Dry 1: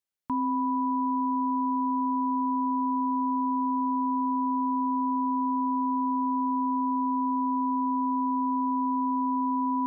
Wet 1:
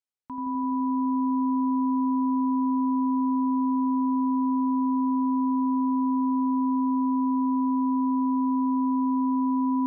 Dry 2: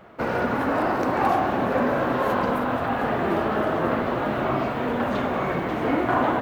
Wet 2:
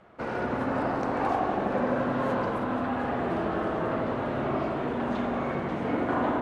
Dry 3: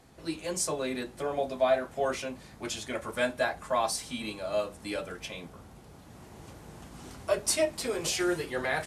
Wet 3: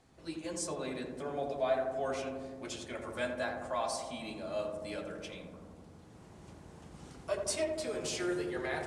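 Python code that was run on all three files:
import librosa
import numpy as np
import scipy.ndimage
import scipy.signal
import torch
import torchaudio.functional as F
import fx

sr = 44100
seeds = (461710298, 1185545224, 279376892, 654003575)

p1 = scipy.signal.sosfilt(scipy.signal.butter(4, 10000.0, 'lowpass', fs=sr, output='sos'), x)
p2 = p1 + fx.echo_filtered(p1, sr, ms=84, feedback_pct=84, hz=1100.0, wet_db=-3.5, dry=0)
y = p2 * 10.0 ** (-7.5 / 20.0)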